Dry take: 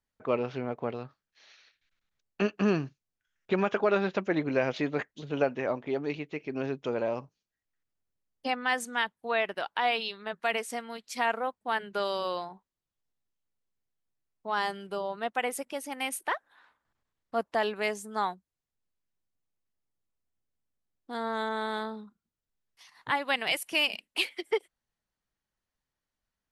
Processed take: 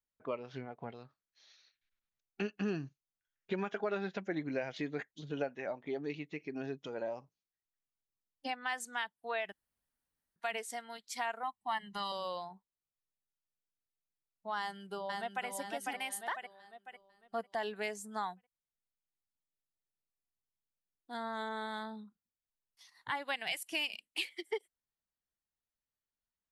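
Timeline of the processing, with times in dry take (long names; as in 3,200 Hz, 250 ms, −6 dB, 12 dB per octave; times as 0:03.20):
0:09.52–0:10.36: fill with room tone
0:11.43–0:12.12: comb filter 1 ms, depth 91%
0:14.59–0:15.46: delay throw 500 ms, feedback 45%, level −2.5 dB
whole clip: dynamic equaliser 7,500 Hz, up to +4 dB, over −60 dBFS, Q 5.7; downward compressor 2 to 1, threshold −32 dBFS; noise reduction from a noise print of the clip's start 8 dB; level −3.5 dB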